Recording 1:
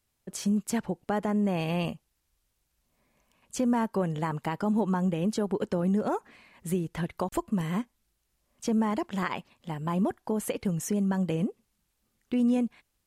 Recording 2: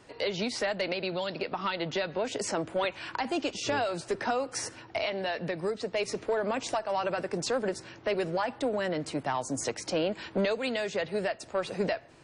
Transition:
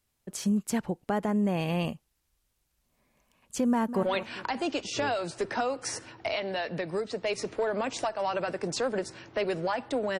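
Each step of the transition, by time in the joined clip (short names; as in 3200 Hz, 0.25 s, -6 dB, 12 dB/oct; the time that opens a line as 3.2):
recording 1
3.68–4.03 echo throw 0.2 s, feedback 40%, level -12 dB
4.03 switch to recording 2 from 2.73 s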